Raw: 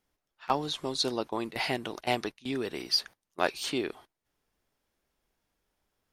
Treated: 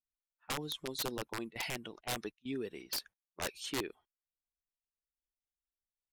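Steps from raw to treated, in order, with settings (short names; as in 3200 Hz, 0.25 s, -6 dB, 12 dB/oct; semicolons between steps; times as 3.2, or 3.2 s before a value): per-bin expansion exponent 1.5; wrapped overs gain 24.5 dB; low-pass opened by the level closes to 1300 Hz, open at -33 dBFS; gain -4 dB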